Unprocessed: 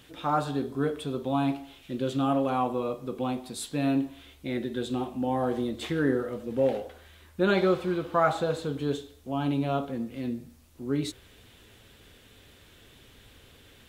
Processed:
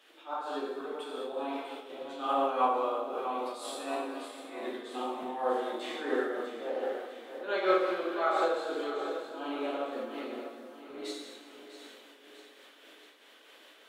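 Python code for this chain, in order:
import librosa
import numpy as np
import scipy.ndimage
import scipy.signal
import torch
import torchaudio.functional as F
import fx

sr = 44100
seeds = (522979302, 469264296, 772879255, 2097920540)

y = scipy.signal.sosfilt(scipy.signal.bessel(8, 520.0, 'highpass', norm='mag', fs=sr, output='sos'), x)
y = fx.high_shelf(y, sr, hz=4100.0, db=-11.0)
y = fx.auto_swell(y, sr, attack_ms=188.0)
y = fx.echo_feedback(y, sr, ms=647, feedback_pct=47, wet_db=-10.5)
y = fx.rev_plate(y, sr, seeds[0], rt60_s=1.3, hf_ratio=0.95, predelay_ms=0, drr_db=-6.0)
y = fx.am_noise(y, sr, seeds[1], hz=5.7, depth_pct=65)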